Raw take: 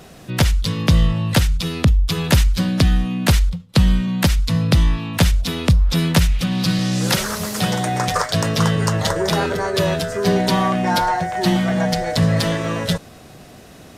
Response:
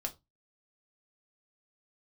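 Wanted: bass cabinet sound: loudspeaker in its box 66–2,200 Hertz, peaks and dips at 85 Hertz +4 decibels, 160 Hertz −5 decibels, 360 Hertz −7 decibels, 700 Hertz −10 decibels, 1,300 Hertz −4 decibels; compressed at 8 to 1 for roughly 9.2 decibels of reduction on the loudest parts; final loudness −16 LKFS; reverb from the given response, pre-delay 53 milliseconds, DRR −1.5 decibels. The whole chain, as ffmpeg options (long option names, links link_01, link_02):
-filter_complex "[0:a]acompressor=threshold=-19dB:ratio=8,asplit=2[link_01][link_02];[1:a]atrim=start_sample=2205,adelay=53[link_03];[link_02][link_03]afir=irnorm=-1:irlink=0,volume=1dB[link_04];[link_01][link_04]amix=inputs=2:normalize=0,highpass=frequency=66:width=0.5412,highpass=frequency=66:width=1.3066,equalizer=frequency=85:width_type=q:width=4:gain=4,equalizer=frequency=160:width_type=q:width=4:gain=-5,equalizer=frequency=360:width_type=q:width=4:gain=-7,equalizer=frequency=700:width_type=q:width=4:gain=-10,equalizer=frequency=1300:width_type=q:width=4:gain=-4,lowpass=frequency=2200:width=0.5412,lowpass=frequency=2200:width=1.3066,volume=7.5dB"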